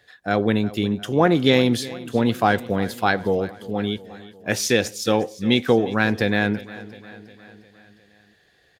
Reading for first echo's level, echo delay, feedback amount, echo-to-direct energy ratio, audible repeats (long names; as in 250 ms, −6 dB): −18.0 dB, 356 ms, 58%, −16.0 dB, 4